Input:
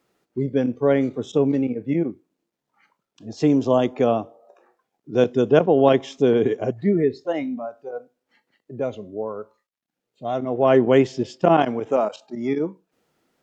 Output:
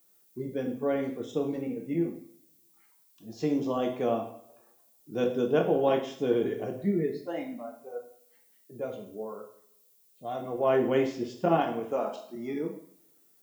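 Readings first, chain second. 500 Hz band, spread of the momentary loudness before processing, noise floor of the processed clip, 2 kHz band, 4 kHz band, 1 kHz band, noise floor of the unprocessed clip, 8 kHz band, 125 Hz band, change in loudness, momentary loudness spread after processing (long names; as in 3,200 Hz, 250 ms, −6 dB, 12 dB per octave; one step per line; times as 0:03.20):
−9.0 dB, 15 LU, −64 dBFS, −8.0 dB, −8.5 dB, −8.0 dB, −83 dBFS, can't be measured, −10.5 dB, −9.0 dB, 16 LU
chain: flanger 0.54 Hz, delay 4.5 ms, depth 2.3 ms, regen −87%
background noise violet −60 dBFS
coupled-rooms reverb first 0.56 s, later 1.5 s, from −25 dB, DRR 2 dB
level −6 dB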